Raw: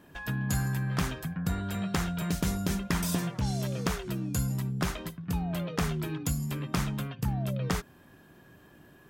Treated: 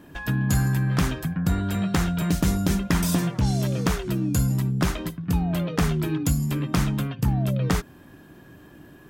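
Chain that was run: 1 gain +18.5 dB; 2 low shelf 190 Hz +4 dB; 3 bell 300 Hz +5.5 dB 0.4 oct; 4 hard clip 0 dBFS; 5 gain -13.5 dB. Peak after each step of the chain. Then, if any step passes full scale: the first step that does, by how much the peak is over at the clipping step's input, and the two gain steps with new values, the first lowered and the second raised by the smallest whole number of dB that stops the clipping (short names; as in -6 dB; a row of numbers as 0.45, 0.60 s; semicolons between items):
+2.0, +4.0, +5.0, 0.0, -13.5 dBFS; step 1, 5.0 dB; step 1 +13.5 dB, step 5 -8.5 dB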